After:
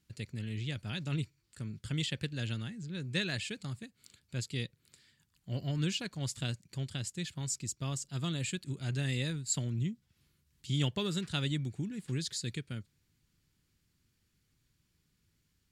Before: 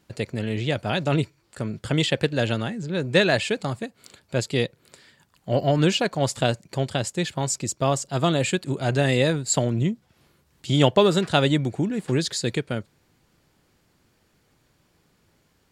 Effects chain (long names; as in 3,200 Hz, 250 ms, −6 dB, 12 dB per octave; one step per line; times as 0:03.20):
guitar amp tone stack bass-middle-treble 6-0-2
level +5.5 dB